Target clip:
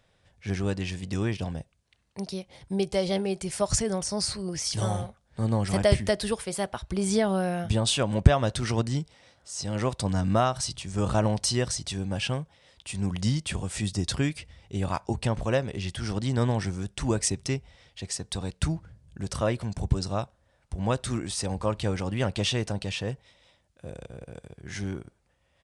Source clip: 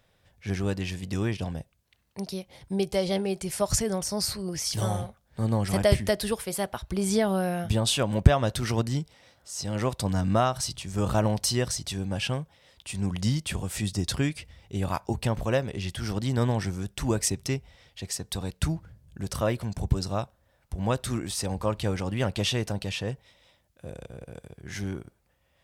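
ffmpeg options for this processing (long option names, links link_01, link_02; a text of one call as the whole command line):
ffmpeg -i in.wav -af "aresample=22050,aresample=44100" out.wav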